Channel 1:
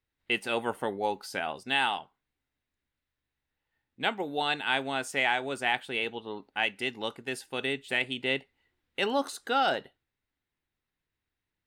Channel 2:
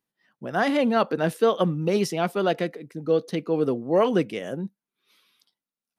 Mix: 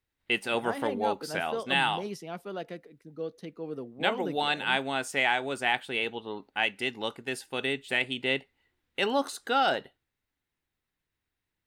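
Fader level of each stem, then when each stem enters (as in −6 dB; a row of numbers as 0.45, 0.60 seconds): +1.0, −14.0 decibels; 0.00, 0.10 seconds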